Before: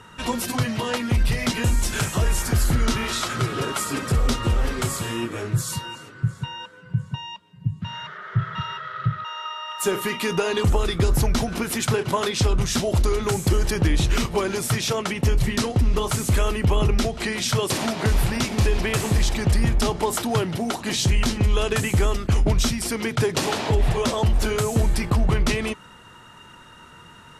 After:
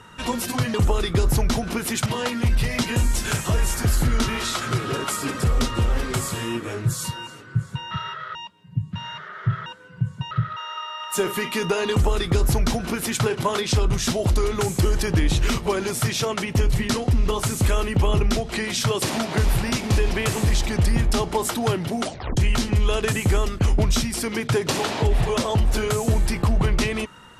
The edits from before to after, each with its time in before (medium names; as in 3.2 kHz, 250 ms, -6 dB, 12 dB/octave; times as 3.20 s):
6.59–7.24 s: swap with 8.55–8.99 s
10.59–11.91 s: copy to 0.74 s
20.70 s: tape stop 0.35 s